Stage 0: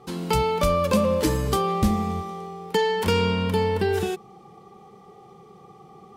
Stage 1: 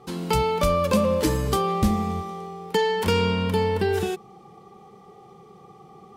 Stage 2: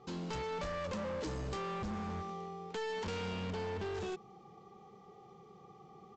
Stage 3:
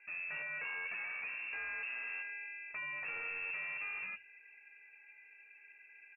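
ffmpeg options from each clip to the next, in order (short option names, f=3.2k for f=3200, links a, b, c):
-af anull
-af "acompressor=threshold=-24dB:ratio=2.5,aresample=16000,asoftclip=type=hard:threshold=-28dB,aresample=44100,volume=-8.5dB"
-filter_complex "[0:a]lowpass=f=2.4k:t=q:w=0.5098,lowpass=f=2.4k:t=q:w=0.6013,lowpass=f=2.4k:t=q:w=0.9,lowpass=f=2.4k:t=q:w=2.563,afreqshift=-2800,asplit=2[a][b];[b]adelay=13,volume=-11.5dB[c];[a][c]amix=inputs=2:normalize=0,bandreject=f=45.04:t=h:w=4,bandreject=f=90.08:t=h:w=4,bandreject=f=135.12:t=h:w=4,volume=-3dB"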